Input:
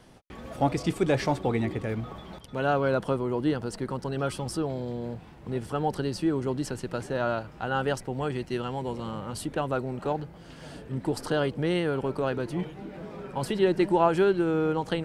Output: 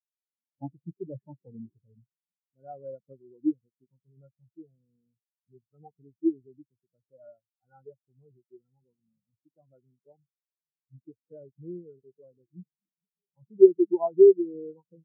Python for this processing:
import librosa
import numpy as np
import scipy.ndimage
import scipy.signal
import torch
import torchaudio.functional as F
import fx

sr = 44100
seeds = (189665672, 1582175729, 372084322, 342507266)

y = scipy.signal.sosfilt(scipy.signal.butter(2, 98.0, 'highpass', fs=sr, output='sos'), x)
y = fx.low_shelf(y, sr, hz=180.0, db=6.0)
y = fx.spectral_expand(y, sr, expansion=4.0)
y = y * librosa.db_to_amplitude(5.0)